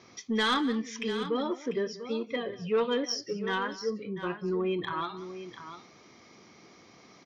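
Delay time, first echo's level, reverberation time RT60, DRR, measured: 184 ms, -18.0 dB, no reverb, no reverb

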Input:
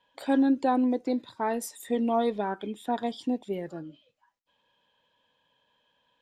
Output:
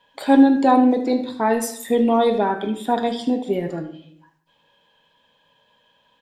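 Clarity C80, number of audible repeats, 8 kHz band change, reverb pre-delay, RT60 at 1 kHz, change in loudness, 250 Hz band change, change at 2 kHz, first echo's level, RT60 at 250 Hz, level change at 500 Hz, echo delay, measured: 13.5 dB, 1, +9.5 dB, 5 ms, 0.65 s, +9.5 dB, +9.5 dB, +9.5 dB, -14.0 dB, 0.80 s, +9.5 dB, 75 ms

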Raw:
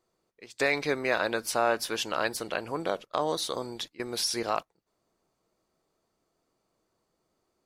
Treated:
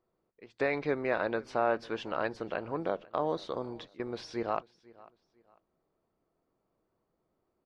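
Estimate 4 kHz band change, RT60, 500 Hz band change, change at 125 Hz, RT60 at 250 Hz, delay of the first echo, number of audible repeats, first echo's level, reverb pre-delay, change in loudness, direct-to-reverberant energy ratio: -14.5 dB, no reverb, -2.0 dB, -0.5 dB, no reverb, 497 ms, 2, -22.5 dB, no reverb, -4.0 dB, no reverb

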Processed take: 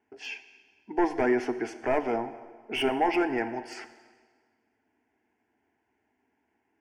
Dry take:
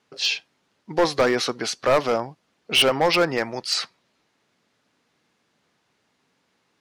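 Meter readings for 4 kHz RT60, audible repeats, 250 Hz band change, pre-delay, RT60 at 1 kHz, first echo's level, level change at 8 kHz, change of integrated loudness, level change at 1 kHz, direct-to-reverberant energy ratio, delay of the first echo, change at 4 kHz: 1.4 s, no echo, -1.0 dB, 5 ms, 1.6 s, no echo, -19.5 dB, -7.0 dB, -4.5 dB, 10.5 dB, no echo, -17.0 dB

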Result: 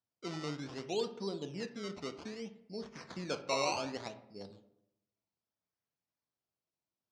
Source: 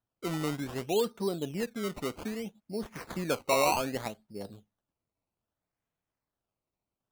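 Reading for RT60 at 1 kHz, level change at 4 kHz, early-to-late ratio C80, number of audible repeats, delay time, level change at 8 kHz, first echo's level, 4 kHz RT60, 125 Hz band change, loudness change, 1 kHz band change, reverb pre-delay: 0.70 s, -3.0 dB, 15.5 dB, no echo, no echo, -7.0 dB, no echo, 0.50 s, -7.5 dB, -7.0 dB, -7.5 dB, 11 ms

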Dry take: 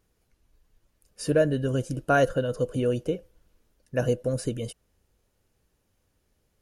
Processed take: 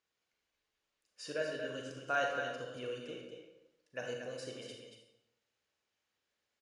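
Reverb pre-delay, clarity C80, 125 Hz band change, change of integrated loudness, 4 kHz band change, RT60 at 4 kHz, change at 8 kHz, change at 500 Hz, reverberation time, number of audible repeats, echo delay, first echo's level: 34 ms, 3.5 dB, -24.5 dB, -13.0 dB, -4.0 dB, 0.65 s, -12.0 dB, -14.0 dB, 0.85 s, 1, 232 ms, -7.5 dB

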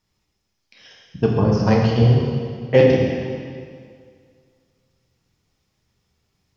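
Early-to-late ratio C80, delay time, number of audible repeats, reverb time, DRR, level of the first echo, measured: 2.0 dB, no echo, no echo, 2.1 s, -2.0 dB, no echo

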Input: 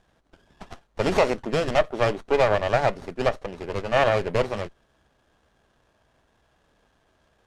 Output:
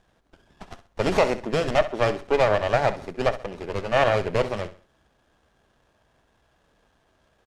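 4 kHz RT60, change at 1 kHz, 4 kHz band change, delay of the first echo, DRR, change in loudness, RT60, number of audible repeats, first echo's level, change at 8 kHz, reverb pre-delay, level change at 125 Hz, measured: no reverb, 0.0 dB, 0.0 dB, 65 ms, no reverb, 0.0 dB, no reverb, 3, -14.0 dB, no reading, no reverb, 0.0 dB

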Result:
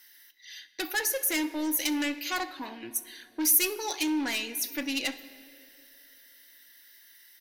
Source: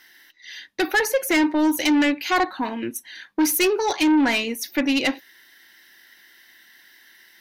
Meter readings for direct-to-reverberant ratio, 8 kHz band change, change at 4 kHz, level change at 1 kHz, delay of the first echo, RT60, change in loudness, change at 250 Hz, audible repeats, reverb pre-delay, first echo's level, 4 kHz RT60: 10.0 dB, 0.0 dB, -5.5 dB, -12.5 dB, 64 ms, 2.7 s, -7.0 dB, -11.5 dB, 1, 3 ms, -22.5 dB, 2.0 s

